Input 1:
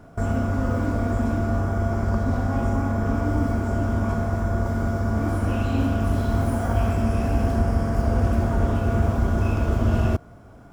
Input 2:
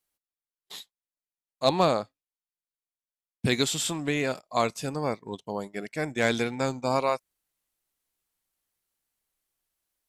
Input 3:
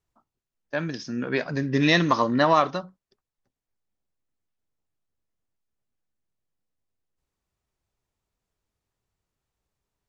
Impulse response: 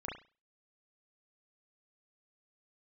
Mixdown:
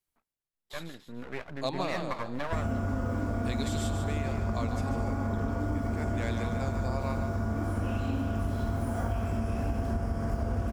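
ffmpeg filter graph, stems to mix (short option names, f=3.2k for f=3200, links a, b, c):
-filter_complex "[0:a]adelay=2350,volume=-0.5dB[a];[1:a]volume=-6dB,asplit=2[b][c];[c]volume=-7dB[d];[2:a]lowpass=f=3.1k:w=0.5412,lowpass=f=3.1k:w=1.3066,aeval=exprs='max(val(0),0)':c=same,volume=-7.5dB[e];[d]aecho=0:1:145|290|435|580|725|870:1|0.44|0.194|0.0852|0.0375|0.0165[f];[a][b][e][f]amix=inputs=4:normalize=0,acompressor=threshold=-27dB:ratio=6"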